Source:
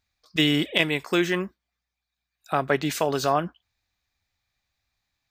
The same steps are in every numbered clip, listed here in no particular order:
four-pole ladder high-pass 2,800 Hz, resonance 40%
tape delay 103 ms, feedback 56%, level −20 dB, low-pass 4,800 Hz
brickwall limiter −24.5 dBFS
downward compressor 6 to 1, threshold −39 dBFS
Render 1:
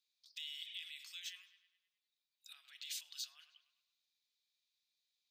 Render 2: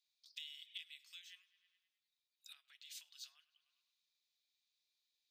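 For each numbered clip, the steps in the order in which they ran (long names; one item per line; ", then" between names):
tape delay, then brickwall limiter, then four-pole ladder high-pass, then downward compressor
tape delay, then downward compressor, then brickwall limiter, then four-pole ladder high-pass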